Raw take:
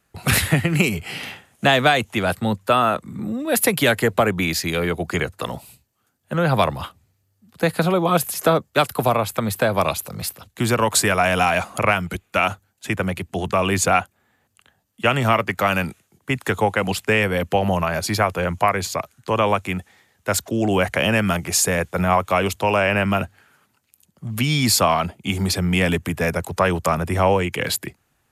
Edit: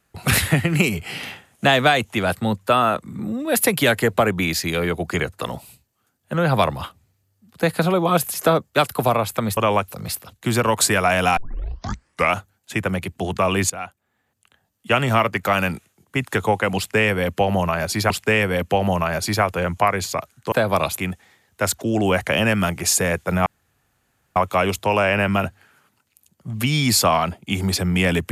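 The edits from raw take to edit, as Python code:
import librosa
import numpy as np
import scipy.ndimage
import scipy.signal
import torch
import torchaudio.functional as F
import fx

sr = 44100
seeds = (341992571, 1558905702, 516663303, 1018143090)

y = fx.edit(x, sr, fx.swap(start_s=9.57, length_s=0.45, other_s=19.33, other_length_s=0.31),
    fx.tape_start(start_s=11.51, length_s=0.98),
    fx.fade_in_from(start_s=13.84, length_s=1.24, floor_db=-18.0),
    fx.repeat(start_s=16.91, length_s=1.33, count=2),
    fx.insert_room_tone(at_s=22.13, length_s=0.9), tone=tone)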